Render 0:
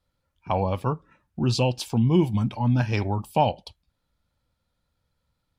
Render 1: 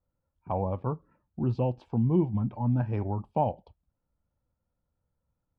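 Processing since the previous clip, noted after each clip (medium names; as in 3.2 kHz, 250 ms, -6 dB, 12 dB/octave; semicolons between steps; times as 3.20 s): low-pass 1 kHz 12 dB/octave; trim -4.5 dB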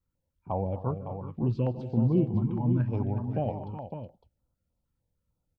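multi-tap echo 151/233/370/558 ms -16/-16/-11/-8.5 dB; step-sequenced notch 6.6 Hz 650–2200 Hz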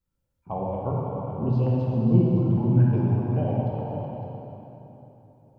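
plate-style reverb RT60 3.5 s, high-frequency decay 0.75×, DRR -4.5 dB; trim -1.5 dB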